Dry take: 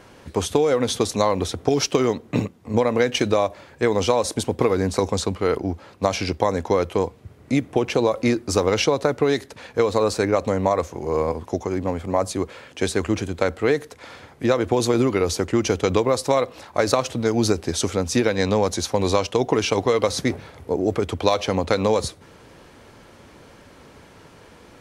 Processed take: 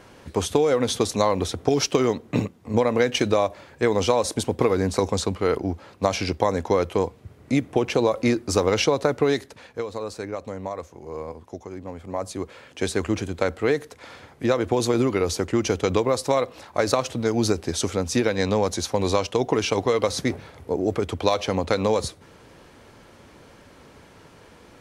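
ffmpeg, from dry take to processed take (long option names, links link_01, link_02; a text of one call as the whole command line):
ffmpeg -i in.wav -af "volume=8.5dB,afade=type=out:start_time=9.29:duration=0.56:silence=0.298538,afade=type=in:start_time=11.87:duration=1.09:silence=0.334965" out.wav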